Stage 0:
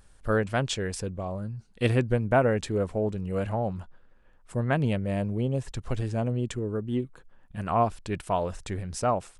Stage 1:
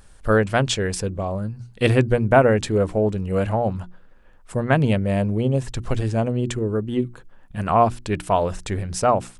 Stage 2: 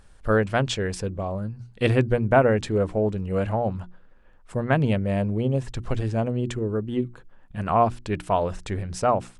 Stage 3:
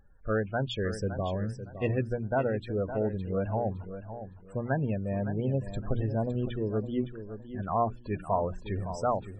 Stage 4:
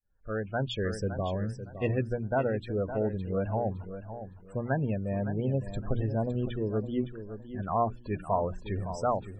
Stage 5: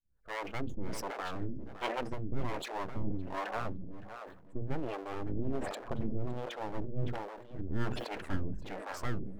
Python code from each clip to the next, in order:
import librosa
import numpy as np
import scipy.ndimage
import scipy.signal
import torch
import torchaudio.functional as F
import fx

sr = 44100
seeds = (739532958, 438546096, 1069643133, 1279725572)

y1 = fx.hum_notches(x, sr, base_hz=60, count=6)
y1 = y1 * 10.0 ** (7.5 / 20.0)
y2 = fx.high_shelf(y1, sr, hz=7200.0, db=-9.0)
y2 = y2 * 10.0 ** (-3.0 / 20.0)
y3 = fx.spec_topn(y2, sr, count=32)
y3 = fx.rider(y3, sr, range_db=4, speed_s=0.5)
y3 = fx.echo_feedback(y3, sr, ms=562, feedback_pct=26, wet_db=-11.0)
y3 = y3 * 10.0 ** (-6.5 / 20.0)
y4 = fx.fade_in_head(y3, sr, length_s=0.61)
y5 = np.abs(y4)
y5 = fx.harmonic_tremolo(y5, sr, hz=1.3, depth_pct=100, crossover_hz=410.0)
y5 = fx.sustainer(y5, sr, db_per_s=62.0)
y5 = y5 * 10.0 ** (1.0 / 20.0)